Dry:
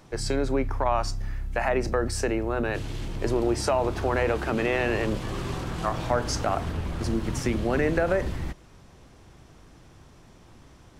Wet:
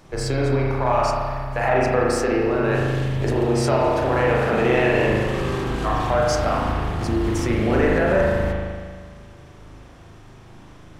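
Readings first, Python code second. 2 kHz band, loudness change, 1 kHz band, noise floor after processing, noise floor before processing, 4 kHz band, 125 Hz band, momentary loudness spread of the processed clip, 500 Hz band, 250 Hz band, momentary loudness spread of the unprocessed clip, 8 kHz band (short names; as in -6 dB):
+6.5 dB, +6.5 dB, +7.0 dB, -45 dBFS, -52 dBFS, +3.5 dB, +7.5 dB, 7 LU, +7.0 dB, +6.0 dB, 8 LU, +1.5 dB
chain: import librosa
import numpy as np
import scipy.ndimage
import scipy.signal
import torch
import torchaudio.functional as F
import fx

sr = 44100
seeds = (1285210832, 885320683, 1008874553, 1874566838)

p1 = np.clip(x, -10.0 ** (-27.5 / 20.0), 10.0 ** (-27.5 / 20.0))
p2 = x + F.gain(torch.from_numpy(p1), -11.0).numpy()
y = fx.rev_spring(p2, sr, rt60_s=1.8, pass_ms=(38,), chirp_ms=50, drr_db=-4.0)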